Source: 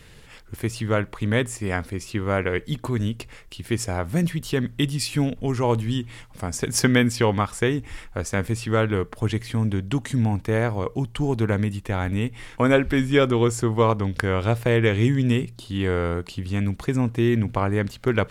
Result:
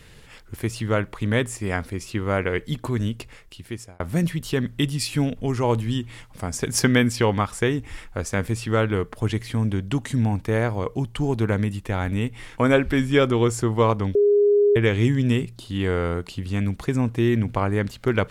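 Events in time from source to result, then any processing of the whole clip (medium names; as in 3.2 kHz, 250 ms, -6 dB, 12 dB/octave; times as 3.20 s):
2.94–4.00 s: fade out equal-power
14.15–14.76 s: bleep 410 Hz -13.5 dBFS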